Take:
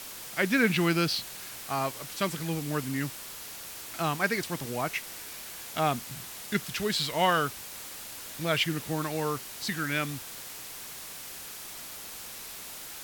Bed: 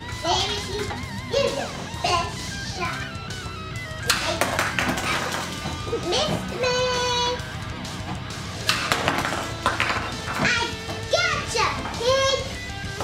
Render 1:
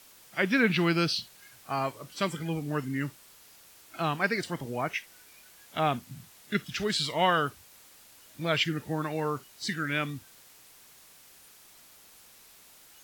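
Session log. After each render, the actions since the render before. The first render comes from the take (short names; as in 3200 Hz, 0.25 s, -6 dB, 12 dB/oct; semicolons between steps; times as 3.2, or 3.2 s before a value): noise print and reduce 13 dB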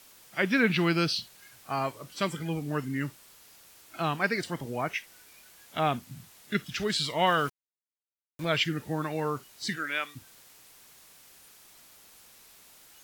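7.27–8.45 sample gate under -39 dBFS; 9.75–10.15 HPF 310 Hz -> 960 Hz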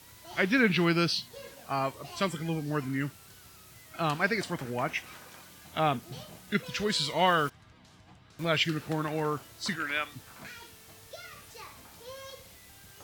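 add bed -25 dB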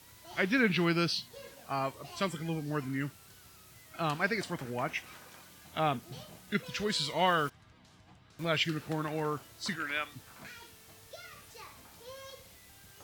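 gain -3 dB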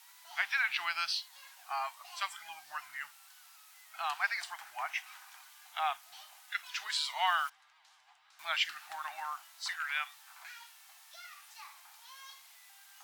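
elliptic high-pass 770 Hz, stop band 40 dB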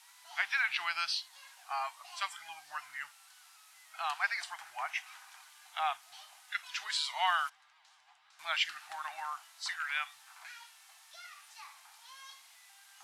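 LPF 12000 Hz 24 dB/oct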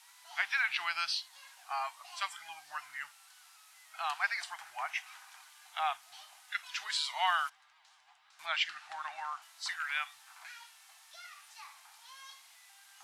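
8.46–9.42 Bessel low-pass 6000 Hz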